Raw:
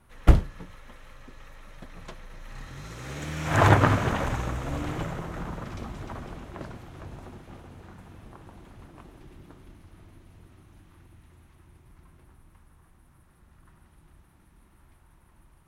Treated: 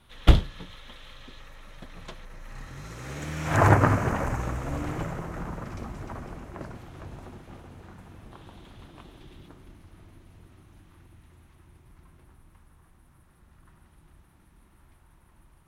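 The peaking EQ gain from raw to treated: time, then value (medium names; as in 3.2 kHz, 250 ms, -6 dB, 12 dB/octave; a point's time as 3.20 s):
peaking EQ 3.5 kHz 0.66 oct
+15 dB
from 1.40 s +5 dB
from 2.25 s -3 dB
from 3.57 s -13 dB
from 4.41 s -6.5 dB
from 6.75 s 0 dB
from 8.32 s +10.5 dB
from 9.48 s +1 dB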